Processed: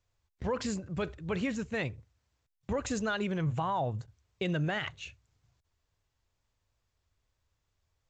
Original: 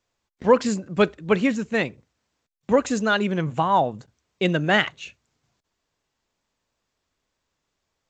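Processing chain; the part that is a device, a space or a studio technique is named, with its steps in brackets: car stereo with a boomy subwoofer (resonant low shelf 140 Hz +12 dB, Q 1.5; limiter -17.5 dBFS, peak gain reduction 11.5 dB); gain -6 dB

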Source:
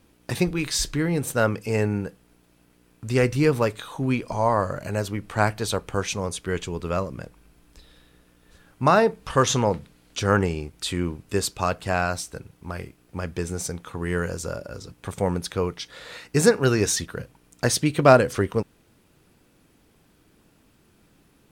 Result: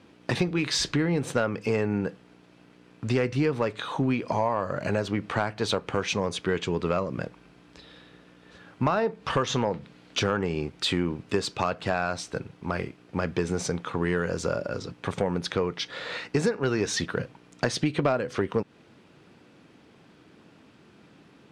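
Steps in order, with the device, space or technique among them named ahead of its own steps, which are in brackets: AM radio (BPF 130–4300 Hz; compressor 8:1, threshold -27 dBFS, peak gain reduction 18.5 dB; soft clip -18.5 dBFS, distortion -21 dB); gain +6.5 dB

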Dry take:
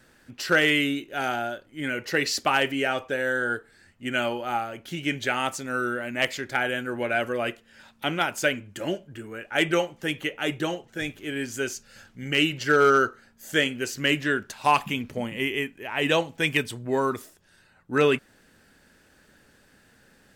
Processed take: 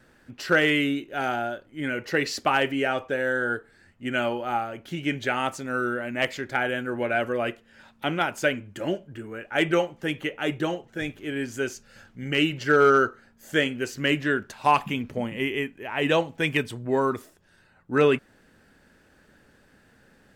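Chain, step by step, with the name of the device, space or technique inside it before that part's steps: behind a face mask (high shelf 2800 Hz -8 dB); gain +1.5 dB

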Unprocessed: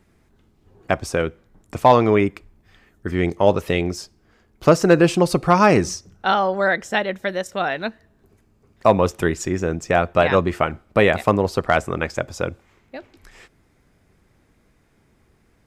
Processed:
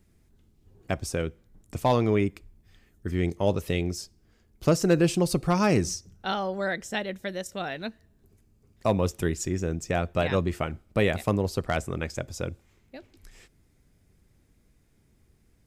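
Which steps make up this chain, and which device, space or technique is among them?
smiley-face EQ (low shelf 130 Hz +6.5 dB; bell 1100 Hz -6.5 dB 2.1 oct; high shelf 5600 Hz +7 dB); gain -6.5 dB

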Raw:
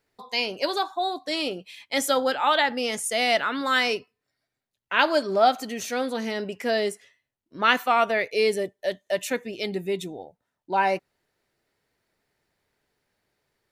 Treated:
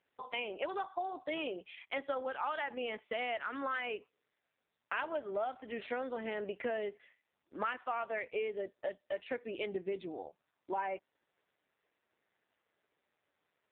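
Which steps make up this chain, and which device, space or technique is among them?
voicemail (BPF 320–2700 Hz; compressor 8:1, threshold -33 dBFS, peak gain reduction 18 dB; AMR-NB 5.9 kbps 8000 Hz)

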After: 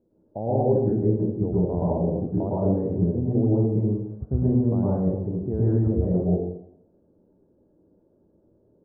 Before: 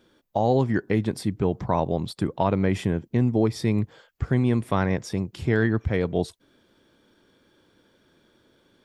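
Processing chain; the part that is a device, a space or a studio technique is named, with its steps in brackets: next room (LPF 640 Hz 24 dB/oct; reverb RT60 0.75 s, pre-delay 0.104 s, DRR -7.5 dB); gain -6 dB

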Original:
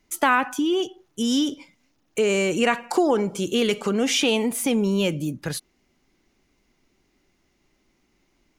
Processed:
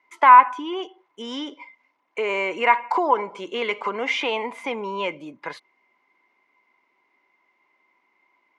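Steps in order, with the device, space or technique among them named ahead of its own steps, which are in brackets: tin-can telephone (BPF 520–2400 Hz; small resonant body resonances 1000/2100 Hz, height 17 dB, ringing for 35 ms)

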